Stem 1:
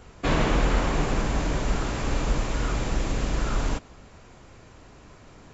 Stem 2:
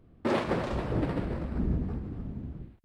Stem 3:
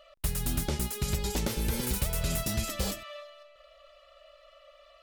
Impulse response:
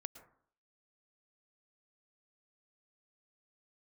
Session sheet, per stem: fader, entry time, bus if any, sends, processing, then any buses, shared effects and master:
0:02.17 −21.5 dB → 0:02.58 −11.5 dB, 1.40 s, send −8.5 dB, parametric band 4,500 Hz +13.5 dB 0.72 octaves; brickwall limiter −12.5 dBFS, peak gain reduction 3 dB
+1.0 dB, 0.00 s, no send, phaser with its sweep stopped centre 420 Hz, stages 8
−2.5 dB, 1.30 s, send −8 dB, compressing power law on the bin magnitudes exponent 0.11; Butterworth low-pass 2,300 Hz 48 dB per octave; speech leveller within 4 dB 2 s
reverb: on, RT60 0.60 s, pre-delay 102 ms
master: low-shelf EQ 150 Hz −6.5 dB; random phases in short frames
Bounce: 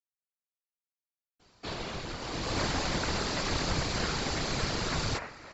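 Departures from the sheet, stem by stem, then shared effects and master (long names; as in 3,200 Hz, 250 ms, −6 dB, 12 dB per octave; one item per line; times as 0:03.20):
stem 1 −21.5 dB → −15.0 dB
stem 2: muted
stem 3: entry 1.30 s → 2.35 s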